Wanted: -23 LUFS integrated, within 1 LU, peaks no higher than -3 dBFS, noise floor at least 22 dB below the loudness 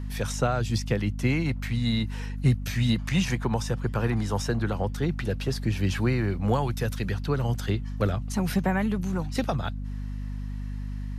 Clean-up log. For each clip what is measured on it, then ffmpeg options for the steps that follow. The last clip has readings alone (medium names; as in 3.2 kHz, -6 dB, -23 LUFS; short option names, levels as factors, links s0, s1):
hum 50 Hz; highest harmonic 250 Hz; hum level -30 dBFS; loudness -28.0 LUFS; peak level -11.5 dBFS; loudness target -23.0 LUFS
-> -af "bandreject=f=50:t=h:w=4,bandreject=f=100:t=h:w=4,bandreject=f=150:t=h:w=4,bandreject=f=200:t=h:w=4,bandreject=f=250:t=h:w=4"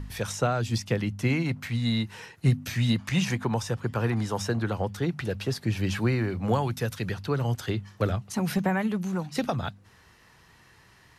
hum not found; loudness -28.5 LUFS; peak level -12.0 dBFS; loudness target -23.0 LUFS
-> -af "volume=1.88"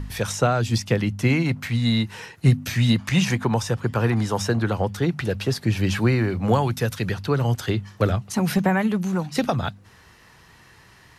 loudness -23.0 LUFS; peak level -6.5 dBFS; noise floor -52 dBFS